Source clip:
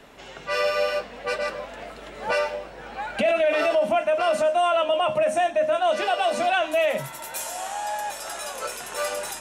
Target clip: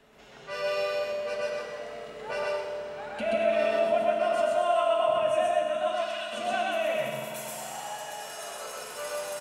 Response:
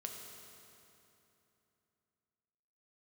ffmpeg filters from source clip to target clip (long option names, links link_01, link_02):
-filter_complex "[0:a]asettb=1/sr,asplit=3[link_01][link_02][link_03];[link_01]atrim=end=5.904[link_04];[link_02]atrim=start=5.9:end=6.33,asetpts=PTS-STARTPTS,afade=type=in:duration=0.004:curve=qsin,afade=type=out:start_time=0.426:duration=0.004:curve=qsin,highpass=frequency=1400:width=0.5412,highpass=frequency=1400:width=1.3066[link_05];[link_03]atrim=start=6.326[link_06];[link_04][link_05]acrossfade=duration=0.004:curve1=hsin:curve2=qsin[link_07];[link_07][link_06]acrossfade=duration=0.004:curve1=qsin:curve2=hsin,aecho=1:1:128.3|230.3:1|0.282[link_08];[1:a]atrim=start_sample=2205[link_09];[link_08][link_09]afir=irnorm=-1:irlink=0,volume=-7dB"